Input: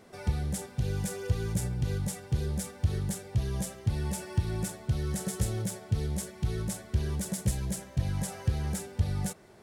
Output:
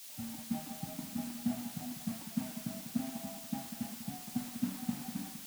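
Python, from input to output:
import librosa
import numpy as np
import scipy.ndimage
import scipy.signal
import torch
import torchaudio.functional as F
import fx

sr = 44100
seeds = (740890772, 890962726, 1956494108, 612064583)

y = fx.speed_glide(x, sr, from_pct=154, to_pct=198)
y = fx.echo_feedback(y, sr, ms=197, feedback_pct=31, wet_db=-5)
y = fx.dereverb_blind(y, sr, rt60_s=1.4)
y = fx.double_bandpass(y, sr, hz=420.0, octaves=1.6)
y = fx.notch_comb(y, sr, f0_hz=350.0)
y = fx.rev_spring(y, sr, rt60_s=1.2, pass_ms=(42, 57), chirp_ms=65, drr_db=8.0)
y = fx.quant_dither(y, sr, seeds[0], bits=8, dither='triangular')
y = fx.band_widen(y, sr, depth_pct=70)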